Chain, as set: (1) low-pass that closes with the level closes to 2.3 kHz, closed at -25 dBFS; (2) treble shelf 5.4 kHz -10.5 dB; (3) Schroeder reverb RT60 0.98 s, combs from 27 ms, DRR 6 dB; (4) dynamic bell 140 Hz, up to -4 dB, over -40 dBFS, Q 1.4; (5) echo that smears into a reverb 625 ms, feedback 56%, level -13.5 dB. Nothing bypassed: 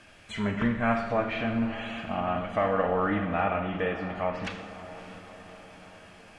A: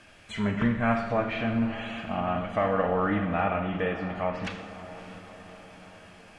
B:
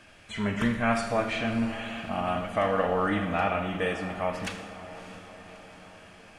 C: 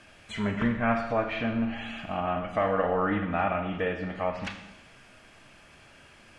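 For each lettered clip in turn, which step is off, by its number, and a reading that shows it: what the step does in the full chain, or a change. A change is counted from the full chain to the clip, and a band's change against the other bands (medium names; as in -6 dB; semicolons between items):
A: 4, 125 Hz band +2.5 dB; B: 1, 4 kHz band +3.5 dB; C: 5, momentary loudness spread change -10 LU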